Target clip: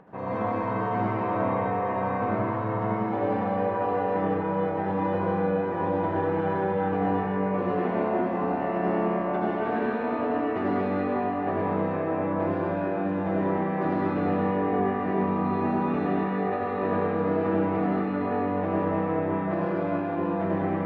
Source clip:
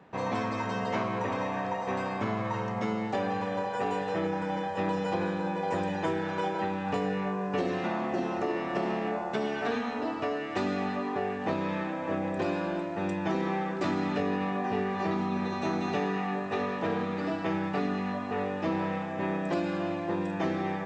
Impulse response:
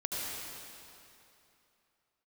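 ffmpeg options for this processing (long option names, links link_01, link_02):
-filter_complex "[0:a]lowpass=1500,acompressor=mode=upward:threshold=-48dB:ratio=2.5[link_01];[1:a]atrim=start_sample=2205[link_02];[link_01][link_02]afir=irnorm=-1:irlink=0"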